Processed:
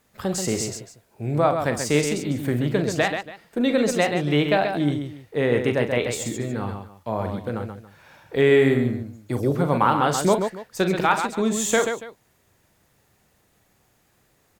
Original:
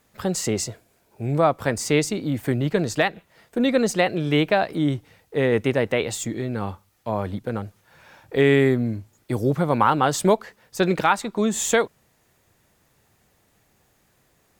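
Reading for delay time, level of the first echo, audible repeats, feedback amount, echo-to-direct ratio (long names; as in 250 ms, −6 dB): 41 ms, −9.5 dB, 3, repeats not evenly spaced, −4.5 dB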